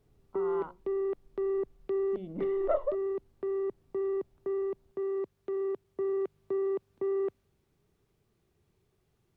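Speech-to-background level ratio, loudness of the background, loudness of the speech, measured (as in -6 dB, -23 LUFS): -3.0 dB, -34.0 LUFS, -37.0 LUFS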